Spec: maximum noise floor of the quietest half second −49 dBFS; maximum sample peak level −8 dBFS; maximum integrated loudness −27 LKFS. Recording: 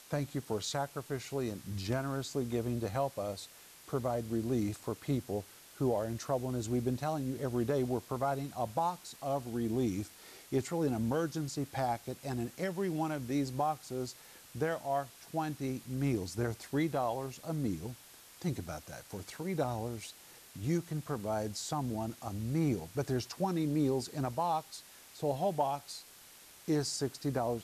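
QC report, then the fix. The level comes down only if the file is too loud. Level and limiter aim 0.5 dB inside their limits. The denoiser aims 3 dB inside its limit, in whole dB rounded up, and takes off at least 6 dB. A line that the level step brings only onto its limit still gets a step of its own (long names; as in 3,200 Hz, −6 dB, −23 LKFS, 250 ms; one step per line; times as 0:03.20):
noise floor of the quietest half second −56 dBFS: in spec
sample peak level −18.5 dBFS: in spec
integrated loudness −35.5 LKFS: in spec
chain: no processing needed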